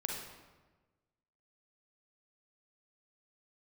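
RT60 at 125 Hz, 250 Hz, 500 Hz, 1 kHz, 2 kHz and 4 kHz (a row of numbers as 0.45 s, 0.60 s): 1.6 s, 1.4 s, 1.3 s, 1.2 s, 1.1 s, 0.85 s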